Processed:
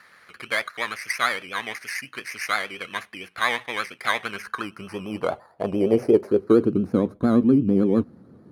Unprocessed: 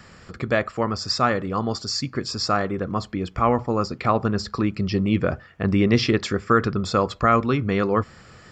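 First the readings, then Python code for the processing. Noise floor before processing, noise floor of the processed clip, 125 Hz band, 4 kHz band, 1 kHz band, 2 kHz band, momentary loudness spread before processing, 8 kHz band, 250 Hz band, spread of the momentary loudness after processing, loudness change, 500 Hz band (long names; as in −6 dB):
−49 dBFS, −55 dBFS, −7.5 dB, −4.0 dB, −6.5 dB, +2.5 dB, 8 LU, −3.5 dB, +0.5 dB, 14 LU, −1.0 dB, 0.0 dB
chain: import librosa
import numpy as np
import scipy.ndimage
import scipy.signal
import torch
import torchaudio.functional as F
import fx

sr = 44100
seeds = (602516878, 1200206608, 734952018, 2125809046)

y = fx.bit_reversed(x, sr, seeds[0], block=16)
y = fx.vibrato(y, sr, rate_hz=8.7, depth_cents=83.0)
y = fx.filter_sweep_bandpass(y, sr, from_hz=2000.0, to_hz=260.0, start_s=4.15, end_s=6.92, q=2.5)
y = F.gain(torch.from_numpy(y), 9.0).numpy()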